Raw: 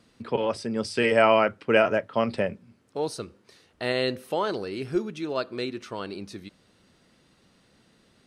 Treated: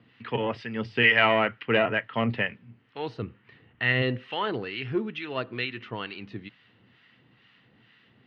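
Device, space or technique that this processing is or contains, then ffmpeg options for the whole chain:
guitar amplifier with harmonic tremolo: -filter_complex "[0:a]asettb=1/sr,asplit=3[a][b][c];[a]atrim=end=3.224[d];[b]atrim=start=3.22:end=4.02,asetpts=PTS-STARTPTS,afade=t=in:d=0.004:c=qsin,afade=t=out:st=0.796:d=0.004:c=qsin,bass=f=250:g=9,treble=f=4k:g=-14[e];[c]atrim=start=4.016[f];[d][e]acrossfade=d=0.004:c1=hsin:c2=qsin[g];[g][f]acrossfade=d=0.004:c1=qsin:c2=hsin,acrossover=split=970[h][i];[h]aeval=exprs='val(0)*(1-0.7/2+0.7/2*cos(2*PI*2.2*n/s))':c=same[j];[i]aeval=exprs='val(0)*(1-0.7/2-0.7/2*cos(2*PI*2.2*n/s))':c=same[k];[j][k]amix=inputs=2:normalize=0,asoftclip=type=tanh:threshold=-14.5dB,highpass=110,equalizer=f=120:t=q:w=4:g=10,equalizer=f=170:t=q:w=4:g=-4,equalizer=f=370:t=q:w=4:g=-4,equalizer=f=580:t=q:w=4:g=-8,equalizer=f=1.9k:t=q:w=4:g=9,equalizer=f=2.9k:t=q:w=4:g=9,lowpass=f=3.5k:w=0.5412,lowpass=f=3.5k:w=1.3066,volume=3.5dB"

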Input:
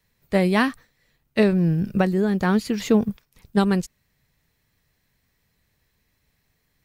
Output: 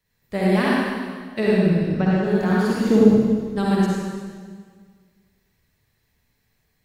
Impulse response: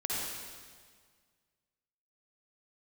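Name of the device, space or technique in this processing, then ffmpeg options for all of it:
stairwell: -filter_complex "[0:a]asettb=1/sr,asplit=3[a][b][c];[a]atrim=end=1.544[d];[b]atrim=start=1.54:end=2.24,asetpts=PTS-STARTPTS,afade=t=in:d=0.004:c=qsin,afade=t=out:st=0.696:d=0.004:c=qsin,lowpass=f=6.5k:w=0.5412,lowpass=f=6.5k:w=1.3066[e];[c]atrim=start=2.236[f];[d][e]acrossfade=d=0.004:c1=hsin:c2=qsin[g];[g][f]acrossfade=d=0.004:c1=qsin:c2=hsin,asettb=1/sr,asplit=3[h][i][j];[h]atrim=end=2.774[k];[i]atrim=start=2.77:end=3.56,asetpts=PTS-STARTPTS,afade=t=in:d=0.004:c=qsin,afade=t=out:st=0.786:d=0.004:c=qsin,tiltshelf=f=970:g=6.5[l];[j]atrim=start=3.556[m];[k][l]acrossfade=d=0.004:c1=hsin:c2=qsin[n];[n][m]acrossfade=d=0.004:c1=qsin:c2=hsin[o];[1:a]atrim=start_sample=2205[p];[o][p]afir=irnorm=-1:irlink=0,volume=-5dB"

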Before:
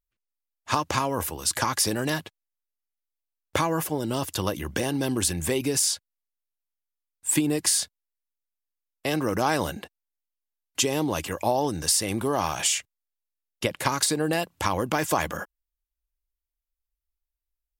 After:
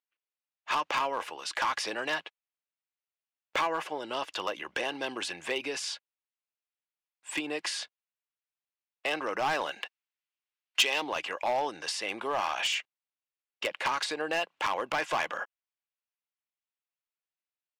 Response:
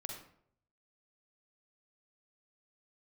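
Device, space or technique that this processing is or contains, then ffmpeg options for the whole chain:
megaphone: -filter_complex "[0:a]highpass=640,lowpass=3.2k,equalizer=f=2.7k:t=o:w=0.52:g=4.5,asoftclip=type=hard:threshold=-22.5dB,asettb=1/sr,asplit=3[a][b][c];[a]atrim=end=9.714[d];[b]atrim=start=9.71:end=11.02,asetpts=PTS-STARTPTS,afade=t=in:d=0.004:c=qsin,afade=t=out:st=1.306:d=0.004:c=qsin,tiltshelf=f=760:g=-7[e];[c]atrim=start=11.016[f];[d][e]acrossfade=d=0.004:c1=hsin:c2=qsin[g];[g][f]acrossfade=d=0.004:c1=qsin:c2=hsin"

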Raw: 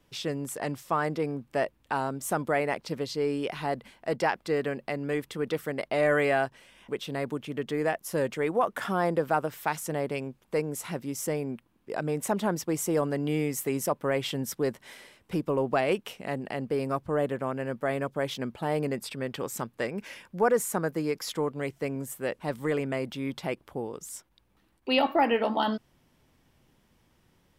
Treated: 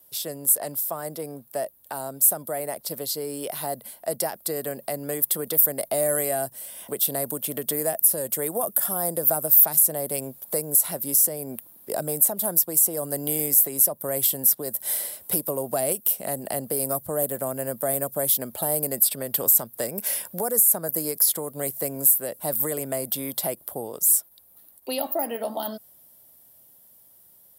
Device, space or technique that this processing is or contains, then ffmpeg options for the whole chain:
FM broadcast chain: -filter_complex "[0:a]highpass=65,dynaudnorm=f=890:g=11:m=11.5dB,acrossover=split=310|6400[a][b][c];[a]acompressor=threshold=-29dB:ratio=4[d];[b]acompressor=threshold=-30dB:ratio=4[e];[c]acompressor=threshold=-36dB:ratio=4[f];[d][e][f]amix=inputs=3:normalize=0,aemphasis=mode=production:type=75fm,alimiter=limit=-14dB:level=0:latency=1:release=375,asoftclip=type=hard:threshold=-16.5dB,lowpass=f=15k:w=0.5412,lowpass=f=15k:w=1.3066,aemphasis=mode=production:type=75fm,equalizer=f=630:t=o:w=0.67:g=12,equalizer=f=2.5k:t=o:w=0.67:g=-8,equalizer=f=6.3k:t=o:w=0.67:g=-8,volume=-5dB"

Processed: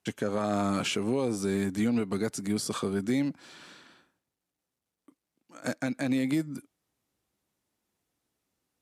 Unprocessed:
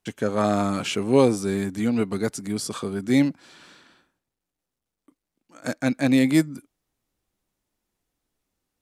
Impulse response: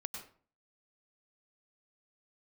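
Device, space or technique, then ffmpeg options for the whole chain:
podcast mastering chain: -af "highpass=78,deesser=0.55,acompressor=threshold=-21dB:ratio=6,alimiter=limit=-18dB:level=0:latency=1:release=110" -ar 32000 -c:a libmp3lame -b:a 96k

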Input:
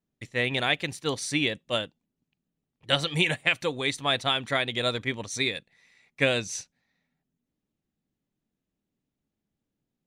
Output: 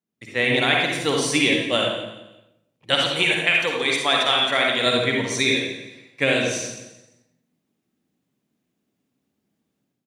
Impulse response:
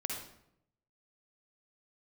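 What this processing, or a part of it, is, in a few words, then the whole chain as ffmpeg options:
far laptop microphone: -filter_complex "[0:a]bandreject=f=50:t=h:w=6,bandreject=f=100:t=h:w=6,bandreject=f=150:t=h:w=6,asettb=1/sr,asplit=3[a][b][c];[a]atrim=end=2.944[d];[b]atrim=start=2.94:end=4.86,asetpts=PTS-STARTPTS,afade=t=in:d=0.004:c=qsin,afade=t=out:st=1.916:d=0.004:c=qsin,highpass=f=350:p=1[e];[c]atrim=start=4.856[f];[d][e]acrossfade=d=0.004:c1=hsin:c2=qsin[g];[g][f]acrossfade=d=0.004:c1=qsin:c2=hsin[h];[1:a]atrim=start_sample=2205[i];[h][i]afir=irnorm=-1:irlink=0,highpass=130,dynaudnorm=f=110:g=5:m=10dB,aecho=1:1:173|346|519:0.224|0.0694|0.0215,volume=-2.5dB"

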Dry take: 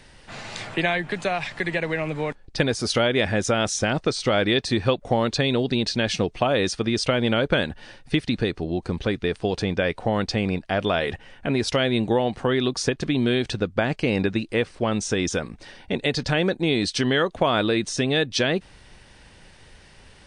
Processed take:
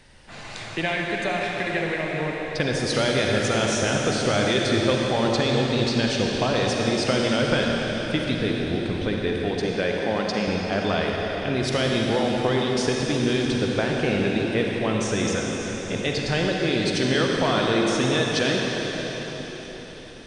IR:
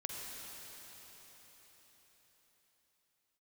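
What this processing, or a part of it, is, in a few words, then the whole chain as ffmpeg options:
cathedral: -filter_complex "[0:a]asettb=1/sr,asplit=3[a][b][c];[a]atrim=end=9.324[d];[b]atrim=start=9.32:end=10.48,asetpts=PTS-STARTPTS,afade=t=in:d=0.004:c=qsin,afade=t=out:st=1.156:d=0.004:c=qsin,highpass=200[e];[c]atrim=start=10.476[f];[d][e]acrossfade=d=0.004:c1=hsin:c2=qsin[g];[g][f]acrossfade=d=0.004:c1=qsin:c2=hsin[h];[1:a]atrim=start_sample=2205[i];[h][i]afir=irnorm=-1:irlink=0"

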